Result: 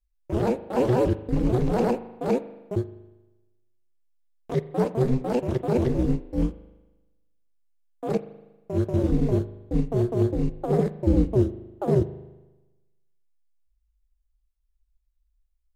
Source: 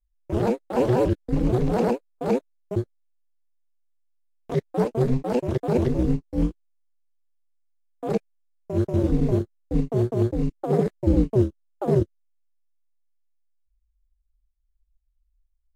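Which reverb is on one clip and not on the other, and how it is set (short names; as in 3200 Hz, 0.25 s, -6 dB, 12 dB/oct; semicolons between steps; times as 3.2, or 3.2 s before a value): spring tank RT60 1.1 s, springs 39 ms, chirp 50 ms, DRR 14 dB; gain -1 dB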